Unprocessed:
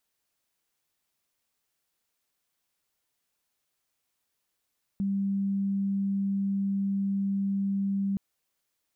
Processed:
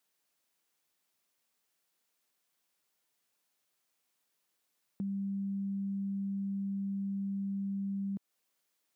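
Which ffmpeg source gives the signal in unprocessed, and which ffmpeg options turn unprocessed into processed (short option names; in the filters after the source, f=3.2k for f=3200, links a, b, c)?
-f lavfi -i "sine=f=197:d=3.17:r=44100,volume=-6.94dB"
-af "highpass=150,acompressor=threshold=-39dB:ratio=2"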